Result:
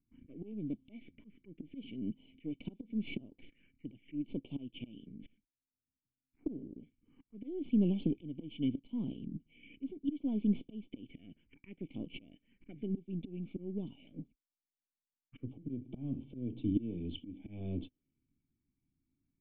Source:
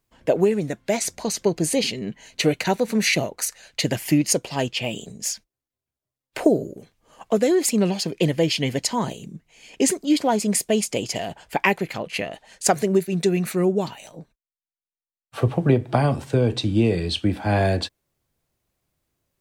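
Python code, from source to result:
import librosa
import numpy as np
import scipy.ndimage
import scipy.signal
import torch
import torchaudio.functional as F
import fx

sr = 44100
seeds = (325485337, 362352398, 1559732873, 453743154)

y = np.where(x < 0.0, 10.0 ** (-7.0 / 20.0) * x, x)
y = fx.high_shelf(y, sr, hz=3200.0, db=-7.5)
y = fx.auto_swell(y, sr, attack_ms=787.0)
y = fx.formant_cascade(y, sr, vowel='i')
y = fx.env_phaser(y, sr, low_hz=530.0, high_hz=1800.0, full_db=-50.0)
y = F.gain(torch.from_numpy(y), 9.0).numpy()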